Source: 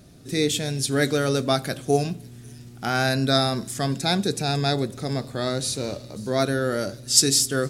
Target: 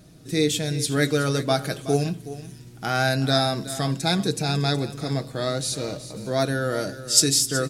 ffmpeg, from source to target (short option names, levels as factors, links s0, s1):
-filter_complex "[0:a]aecho=1:1:6.3:0.39,asplit=2[s0][s1];[s1]aecho=0:1:372:0.2[s2];[s0][s2]amix=inputs=2:normalize=0,volume=0.891"